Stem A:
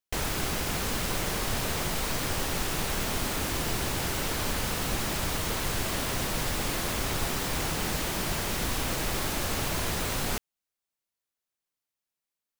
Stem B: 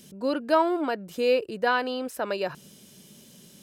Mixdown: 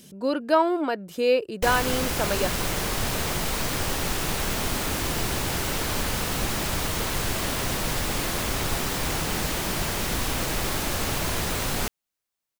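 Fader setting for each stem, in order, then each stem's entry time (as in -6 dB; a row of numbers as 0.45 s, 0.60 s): +3.0 dB, +1.5 dB; 1.50 s, 0.00 s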